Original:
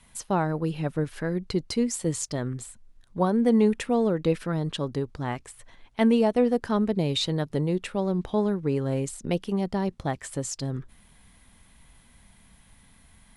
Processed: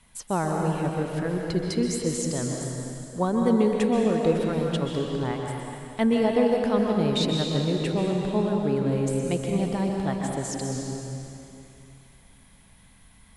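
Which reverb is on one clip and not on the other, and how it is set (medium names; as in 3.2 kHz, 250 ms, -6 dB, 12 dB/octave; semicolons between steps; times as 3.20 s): plate-style reverb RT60 2.8 s, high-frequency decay 0.95×, pre-delay 115 ms, DRR 0 dB; trim -1.5 dB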